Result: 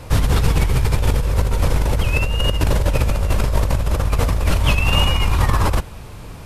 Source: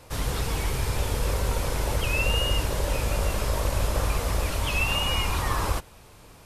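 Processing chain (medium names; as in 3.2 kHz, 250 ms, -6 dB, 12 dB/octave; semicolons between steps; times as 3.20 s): tone controls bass +7 dB, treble -4 dB; compressor with a negative ratio -23 dBFS, ratio -1; trim +7 dB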